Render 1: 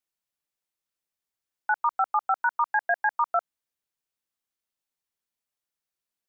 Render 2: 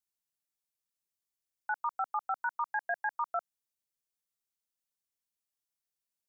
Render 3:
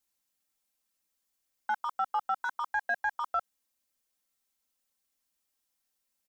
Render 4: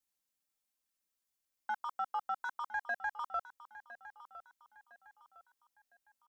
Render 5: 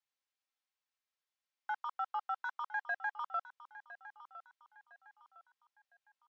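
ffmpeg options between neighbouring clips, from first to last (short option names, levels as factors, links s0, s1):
-af "bass=f=250:g=4,treble=f=4000:g=8,volume=0.355"
-filter_complex "[0:a]asplit=2[s0][s1];[s1]volume=47.3,asoftclip=hard,volume=0.0211,volume=0.335[s2];[s0][s2]amix=inputs=2:normalize=0,aecho=1:1:3.8:0.76,alimiter=level_in=1.26:limit=0.0631:level=0:latency=1:release=18,volume=0.794,volume=1.58"
-af "aecho=1:1:1008|2016|3024:0.178|0.064|0.023,volume=0.501"
-af "highpass=710,lowpass=4000,volume=1.12" -ar 44100 -c:a libmp3lame -b:a 64k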